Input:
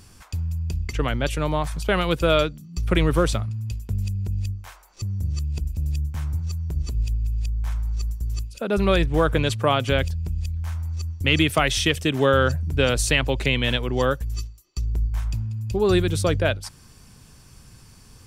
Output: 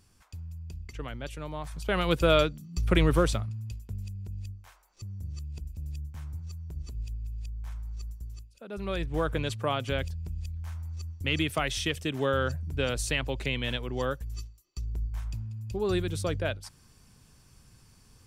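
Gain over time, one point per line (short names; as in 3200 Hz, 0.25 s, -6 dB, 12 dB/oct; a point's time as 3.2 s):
1.53 s -14 dB
2.12 s -3 dB
3.12 s -3 dB
4.04 s -12 dB
8.21 s -12 dB
8.53 s -20 dB
9.16 s -9 dB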